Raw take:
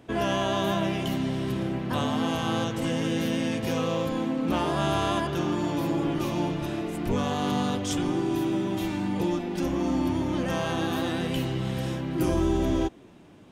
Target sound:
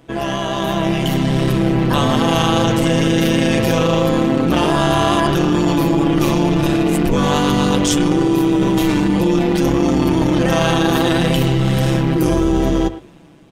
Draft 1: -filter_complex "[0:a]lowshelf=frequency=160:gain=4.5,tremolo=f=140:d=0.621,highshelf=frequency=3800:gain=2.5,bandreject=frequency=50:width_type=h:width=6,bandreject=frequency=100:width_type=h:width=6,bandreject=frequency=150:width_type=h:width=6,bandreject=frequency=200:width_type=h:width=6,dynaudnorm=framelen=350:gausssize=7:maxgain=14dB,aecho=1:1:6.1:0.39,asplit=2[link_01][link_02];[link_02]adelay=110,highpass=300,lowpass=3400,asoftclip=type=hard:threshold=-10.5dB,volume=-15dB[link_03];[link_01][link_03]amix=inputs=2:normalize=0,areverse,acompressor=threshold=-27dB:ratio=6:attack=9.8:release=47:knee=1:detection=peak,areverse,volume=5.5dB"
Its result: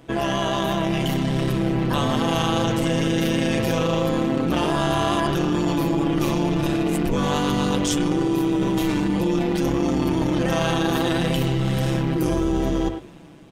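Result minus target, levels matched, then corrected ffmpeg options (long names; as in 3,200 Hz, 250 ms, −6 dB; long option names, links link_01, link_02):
downward compressor: peak gain reduction +6.5 dB
-filter_complex "[0:a]lowshelf=frequency=160:gain=4.5,tremolo=f=140:d=0.621,highshelf=frequency=3800:gain=2.5,bandreject=frequency=50:width_type=h:width=6,bandreject=frequency=100:width_type=h:width=6,bandreject=frequency=150:width_type=h:width=6,bandreject=frequency=200:width_type=h:width=6,dynaudnorm=framelen=350:gausssize=7:maxgain=14dB,aecho=1:1:6.1:0.39,asplit=2[link_01][link_02];[link_02]adelay=110,highpass=300,lowpass=3400,asoftclip=type=hard:threshold=-10.5dB,volume=-15dB[link_03];[link_01][link_03]amix=inputs=2:normalize=0,areverse,acompressor=threshold=-19.5dB:ratio=6:attack=9.8:release=47:knee=1:detection=peak,areverse,volume=5.5dB"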